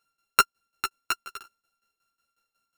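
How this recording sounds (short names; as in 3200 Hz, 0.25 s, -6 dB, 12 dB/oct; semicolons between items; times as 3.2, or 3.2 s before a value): a buzz of ramps at a fixed pitch in blocks of 32 samples; tremolo saw down 5.5 Hz, depth 85%; a shimmering, thickened sound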